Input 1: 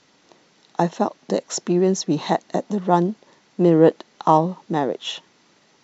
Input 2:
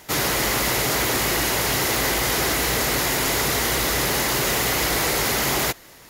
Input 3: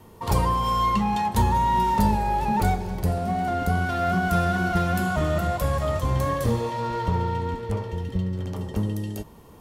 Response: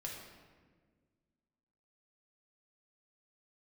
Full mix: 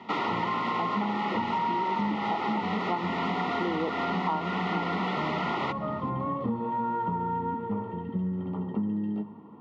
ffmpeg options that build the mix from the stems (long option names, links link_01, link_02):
-filter_complex "[0:a]volume=-6.5dB[link_01];[1:a]volume=-1dB[link_02];[2:a]aemphasis=mode=reproduction:type=riaa,volume=-6.5dB,asplit=2[link_03][link_04];[link_04]volume=-11.5dB[link_05];[3:a]atrim=start_sample=2205[link_06];[link_05][link_06]afir=irnorm=-1:irlink=0[link_07];[link_01][link_02][link_03][link_07]amix=inputs=4:normalize=0,asuperstop=centerf=1600:order=12:qfactor=4,highpass=frequency=190:width=0.5412,highpass=frequency=190:width=1.3066,equalizer=frequency=220:width_type=q:width=4:gain=5,equalizer=frequency=560:width_type=q:width=4:gain=-6,equalizer=frequency=930:width_type=q:width=4:gain=8,equalizer=frequency=1500:width_type=q:width=4:gain=9,equalizer=frequency=2300:width_type=q:width=4:gain=-5,lowpass=frequency=3100:width=0.5412,lowpass=frequency=3100:width=1.3066,acompressor=threshold=-26dB:ratio=6"